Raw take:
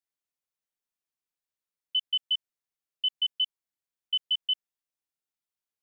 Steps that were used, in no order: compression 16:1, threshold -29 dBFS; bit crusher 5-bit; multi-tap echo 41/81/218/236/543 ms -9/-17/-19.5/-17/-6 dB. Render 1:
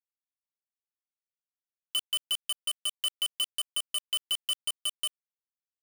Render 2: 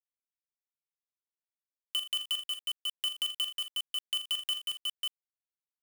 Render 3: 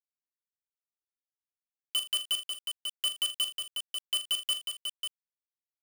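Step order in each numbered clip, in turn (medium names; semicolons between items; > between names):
multi-tap echo > compression > bit crusher; bit crusher > multi-tap echo > compression; compression > bit crusher > multi-tap echo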